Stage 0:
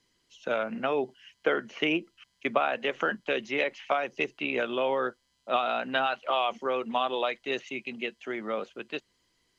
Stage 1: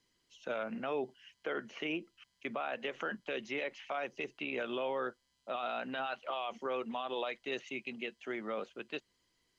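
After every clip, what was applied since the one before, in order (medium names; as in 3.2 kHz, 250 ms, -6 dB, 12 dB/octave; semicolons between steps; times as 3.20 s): peak limiter -22 dBFS, peak gain reduction 11 dB; trim -5 dB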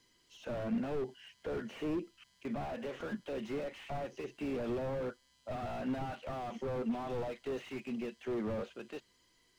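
harmonic-percussive split percussive -10 dB; slew-rate limiter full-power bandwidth 3.1 Hz; trim +9 dB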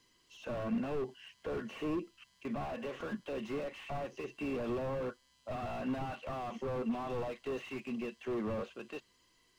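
small resonant body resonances 1.1/2.7 kHz, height 10 dB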